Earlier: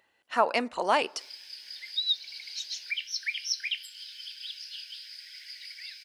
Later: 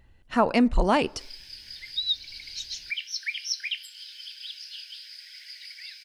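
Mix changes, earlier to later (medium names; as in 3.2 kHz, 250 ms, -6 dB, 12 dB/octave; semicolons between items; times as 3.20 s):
background: send on; master: remove high-pass 560 Hz 12 dB/octave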